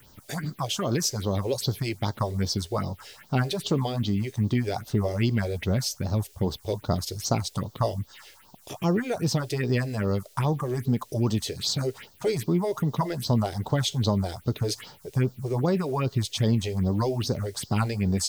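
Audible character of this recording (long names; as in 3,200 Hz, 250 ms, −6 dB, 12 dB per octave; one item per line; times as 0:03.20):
a quantiser's noise floor 10 bits, dither triangular
phaser sweep stages 4, 2.5 Hz, lowest notch 170–2,400 Hz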